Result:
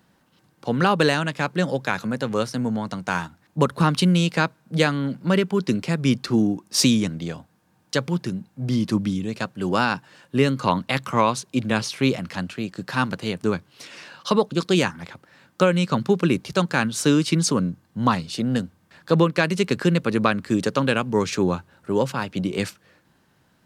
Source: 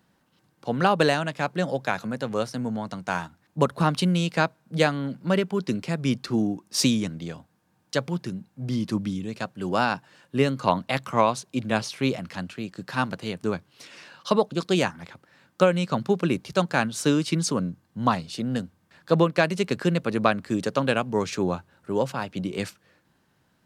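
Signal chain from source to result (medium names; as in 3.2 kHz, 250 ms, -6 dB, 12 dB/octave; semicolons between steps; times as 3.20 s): dynamic bell 680 Hz, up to -7 dB, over -39 dBFS, Q 2.7; in parallel at -3 dB: peak limiter -14 dBFS, peak gain reduction 7.5 dB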